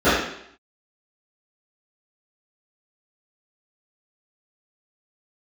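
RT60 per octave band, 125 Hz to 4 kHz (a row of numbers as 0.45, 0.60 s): 0.60, 0.70, 0.70, 0.70, 0.70, 0.70 s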